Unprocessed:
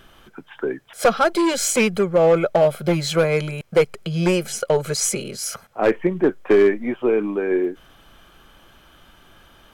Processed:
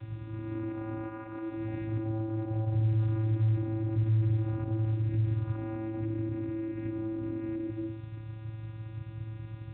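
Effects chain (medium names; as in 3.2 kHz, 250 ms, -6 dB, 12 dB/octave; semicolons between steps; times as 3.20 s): reverse spectral sustain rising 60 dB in 1.22 s; peaking EQ 1.4 kHz +11.5 dB 1.7 oct; reverberation RT60 0.65 s, pre-delay 128 ms, DRR 5 dB; added noise white -23 dBFS; compression 20:1, threshold -15 dBFS, peak gain reduction 16.5 dB; vocoder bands 8, square 110 Hz; band-stop 3.1 kHz, Q 6.6; peak limiter -16 dBFS, peak gain reduction 8.5 dB; FFT filter 250 Hz 0 dB, 400 Hz -16 dB, 970 Hz -19 dB; trim -2.5 dB; A-law 64 kbps 8 kHz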